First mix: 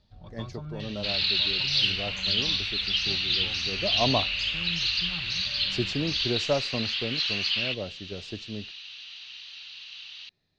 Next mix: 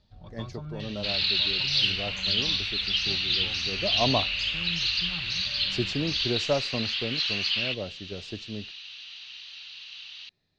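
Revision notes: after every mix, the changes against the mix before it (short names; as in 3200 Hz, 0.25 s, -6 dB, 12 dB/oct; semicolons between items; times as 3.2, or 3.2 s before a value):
none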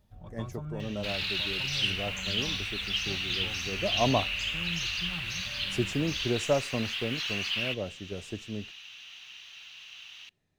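second sound: send on; master: remove synth low-pass 4400 Hz, resonance Q 5.1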